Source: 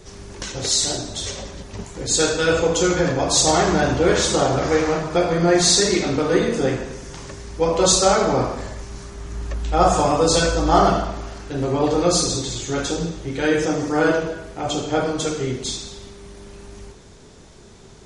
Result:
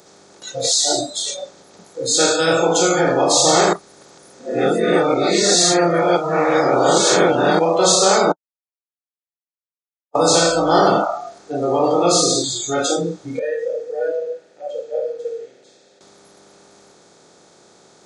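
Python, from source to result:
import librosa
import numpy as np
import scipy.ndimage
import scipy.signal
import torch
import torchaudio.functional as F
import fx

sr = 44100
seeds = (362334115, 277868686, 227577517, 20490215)

y = fx.vowel_filter(x, sr, vowel='e', at=(13.39, 16.01))
y = fx.edit(y, sr, fx.reverse_span(start_s=3.73, length_s=3.86),
    fx.silence(start_s=8.32, length_s=1.83), tone=tone)
y = fx.bin_compress(y, sr, power=0.4)
y = fx.noise_reduce_blind(y, sr, reduce_db=25)
y = scipy.signal.sosfilt(scipy.signal.butter(2, 160.0, 'highpass', fs=sr, output='sos'), y)
y = y * 10.0 ** (-2.5 / 20.0)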